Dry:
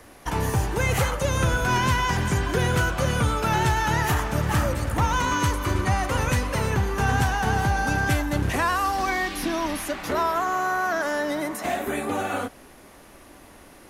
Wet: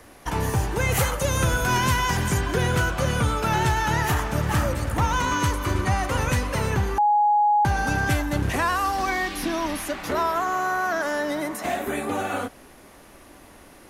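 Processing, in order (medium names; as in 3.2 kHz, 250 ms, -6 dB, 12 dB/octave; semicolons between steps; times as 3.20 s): 0.92–2.41 s: treble shelf 7.6 kHz +9 dB; 6.98–7.65 s: bleep 833 Hz -15.5 dBFS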